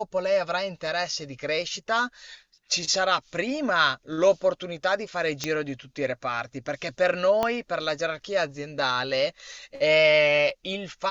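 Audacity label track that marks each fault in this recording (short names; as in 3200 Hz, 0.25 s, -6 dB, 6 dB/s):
5.440000	5.440000	pop -12 dBFS
7.430000	7.430000	pop -11 dBFS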